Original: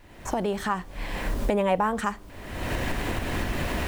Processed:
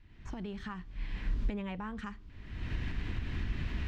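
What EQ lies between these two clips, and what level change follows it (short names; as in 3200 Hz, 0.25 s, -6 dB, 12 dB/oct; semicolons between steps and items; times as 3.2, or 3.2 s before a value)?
air absorption 210 m; passive tone stack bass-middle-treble 6-0-2; notch 540 Hz, Q 12; +8.5 dB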